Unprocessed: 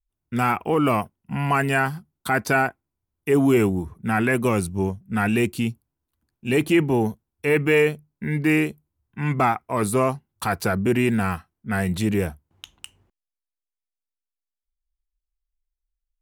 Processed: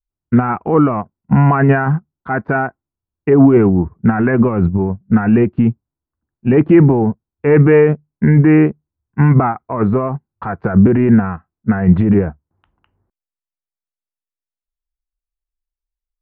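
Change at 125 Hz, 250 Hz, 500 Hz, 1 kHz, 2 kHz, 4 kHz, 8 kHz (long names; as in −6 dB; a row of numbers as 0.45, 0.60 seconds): +12.5 dB, +10.5 dB, +7.5 dB, +4.0 dB, +1.0 dB, below −10 dB, below −40 dB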